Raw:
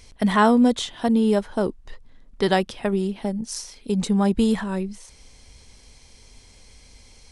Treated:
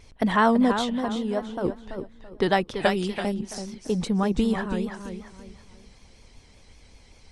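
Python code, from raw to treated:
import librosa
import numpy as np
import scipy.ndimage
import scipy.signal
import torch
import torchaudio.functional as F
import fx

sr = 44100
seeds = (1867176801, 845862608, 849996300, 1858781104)

y = fx.comb_fb(x, sr, f0_hz=190.0, decay_s=1.1, harmonics='all', damping=0.0, mix_pct=50, at=(1.0, 1.65))
y = fx.echo_feedback(y, sr, ms=334, feedback_pct=32, wet_db=-8)
y = fx.hpss(y, sr, part='percussive', gain_db=6)
y = fx.high_shelf(y, sr, hz=2000.0, db=11.5, at=(2.8, 3.33), fade=0.02)
y = fx.vibrato(y, sr, rate_hz=5.2, depth_cents=74.0)
y = fx.high_shelf(y, sr, hz=4500.0, db=-11.5)
y = F.gain(torch.from_numpy(y), -4.0).numpy()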